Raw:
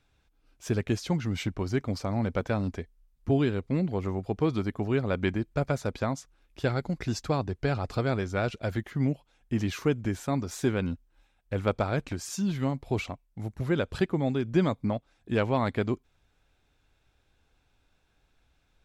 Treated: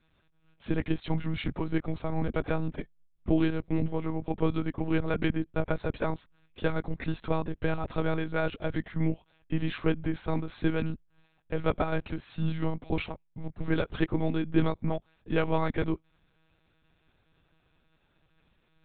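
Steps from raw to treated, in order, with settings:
one-pitch LPC vocoder at 8 kHz 160 Hz

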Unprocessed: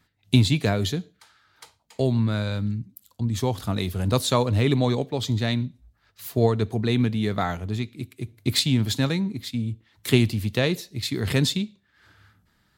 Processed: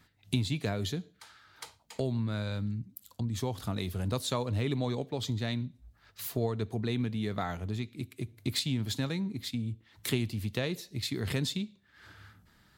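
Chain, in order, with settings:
downward compressor 2 to 1, threshold −41 dBFS, peak gain reduction 15.5 dB
level +2.5 dB

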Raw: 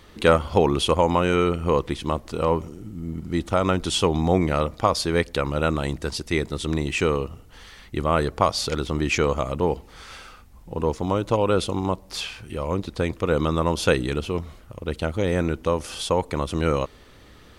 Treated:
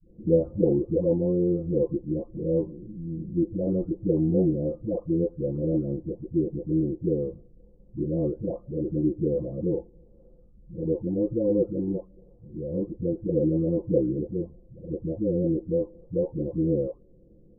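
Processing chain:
every frequency bin delayed by itself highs late, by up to 944 ms
elliptic low-pass filter 510 Hz, stop band 80 dB
dynamic equaliser 310 Hz, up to +8 dB, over −46 dBFS, Q 5.9

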